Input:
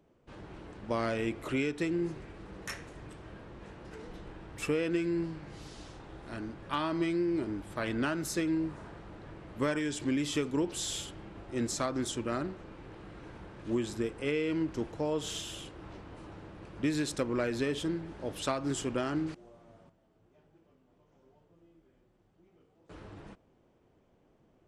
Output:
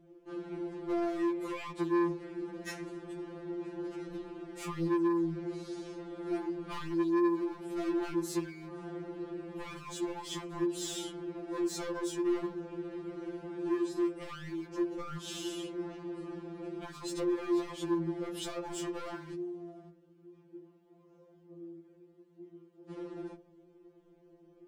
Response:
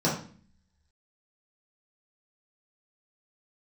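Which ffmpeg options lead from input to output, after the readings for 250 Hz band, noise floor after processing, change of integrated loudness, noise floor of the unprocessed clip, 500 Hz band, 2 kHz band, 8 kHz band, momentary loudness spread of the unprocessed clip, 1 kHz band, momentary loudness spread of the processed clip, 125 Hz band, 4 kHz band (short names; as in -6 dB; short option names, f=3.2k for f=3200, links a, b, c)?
0.0 dB, -62 dBFS, -2.5 dB, -68 dBFS, -0.5 dB, -7.0 dB, -4.5 dB, 17 LU, -1.5 dB, 14 LU, -5.5 dB, -4.5 dB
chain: -filter_complex "[0:a]equalizer=f=360:w=1.8:g=13.5,acompressor=threshold=-26dB:ratio=4,volume=32dB,asoftclip=hard,volume=-32dB,asplit=2[a][b];[1:a]atrim=start_sample=2205,asetrate=40572,aresample=44100[c];[b][c]afir=irnorm=-1:irlink=0,volume=-28dB[d];[a][d]amix=inputs=2:normalize=0,afftfilt=real='re*2.83*eq(mod(b,8),0)':imag='im*2.83*eq(mod(b,8),0)':win_size=2048:overlap=0.75"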